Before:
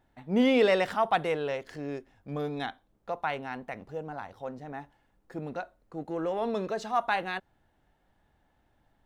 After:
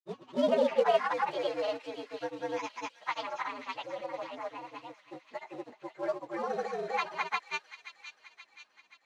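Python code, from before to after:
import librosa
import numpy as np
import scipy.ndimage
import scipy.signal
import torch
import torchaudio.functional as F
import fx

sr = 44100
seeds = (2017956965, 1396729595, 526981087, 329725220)

p1 = fx.partial_stretch(x, sr, pct=120)
p2 = fx.env_lowpass_down(p1, sr, base_hz=2200.0, full_db=-24.0)
p3 = fx.granulator(p2, sr, seeds[0], grain_ms=100.0, per_s=20.0, spray_ms=258.0, spread_st=0)
p4 = fx.quant_float(p3, sr, bits=2)
p5 = p3 + (p4 * 10.0 ** (-5.0 / 20.0))
p6 = fx.bandpass_edges(p5, sr, low_hz=420.0, high_hz=5700.0)
y = p6 + fx.echo_wet_highpass(p6, sr, ms=528, feedback_pct=55, hz=2500.0, wet_db=-8.0, dry=0)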